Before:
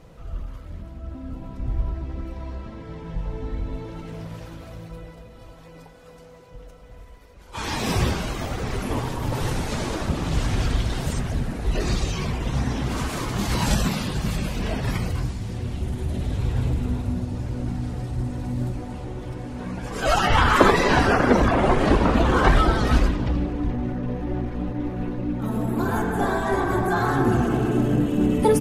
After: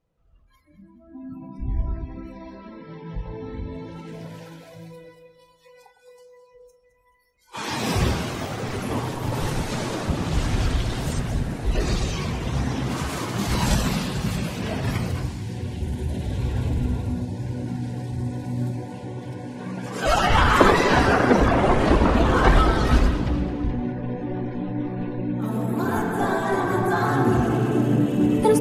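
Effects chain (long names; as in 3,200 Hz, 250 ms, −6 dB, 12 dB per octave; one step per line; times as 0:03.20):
noise reduction from a noise print of the clip's start 27 dB
delay that swaps between a low-pass and a high-pass 107 ms, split 960 Hz, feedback 62%, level −9 dB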